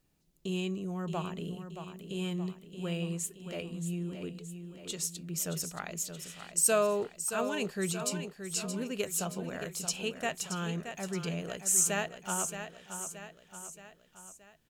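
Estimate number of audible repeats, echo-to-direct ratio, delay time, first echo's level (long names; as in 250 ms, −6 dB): 4, −7.5 dB, 624 ms, −9.0 dB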